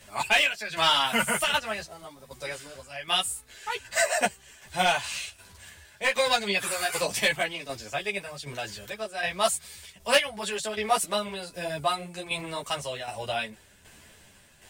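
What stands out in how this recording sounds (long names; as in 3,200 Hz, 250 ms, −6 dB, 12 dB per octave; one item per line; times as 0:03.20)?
tremolo saw down 1.3 Hz, depth 60%
a shimmering, thickened sound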